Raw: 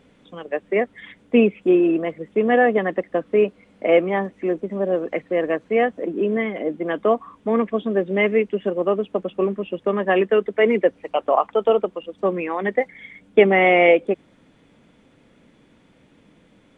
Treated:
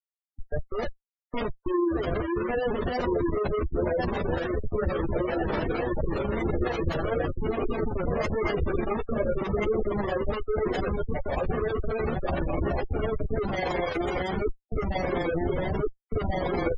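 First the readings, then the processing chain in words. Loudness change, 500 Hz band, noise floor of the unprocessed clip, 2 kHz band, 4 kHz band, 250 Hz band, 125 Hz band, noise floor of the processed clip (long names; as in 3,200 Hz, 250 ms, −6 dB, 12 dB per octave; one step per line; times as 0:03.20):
−8.5 dB, −8.5 dB, −56 dBFS, −10.0 dB, can't be measured, −6.5 dB, +4.5 dB, −85 dBFS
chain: feedback delay that plays each chunk backwards 696 ms, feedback 68%, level −1.5 dB
reverb reduction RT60 0.61 s
automatic gain control gain up to 16 dB
comparator with hysteresis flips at −19.5 dBFS
multi-voice chorus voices 6, 0.24 Hz, delay 13 ms, depth 1.8 ms
amplitude modulation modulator 24 Hz, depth 25%
gate on every frequency bin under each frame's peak −20 dB strong
level −7 dB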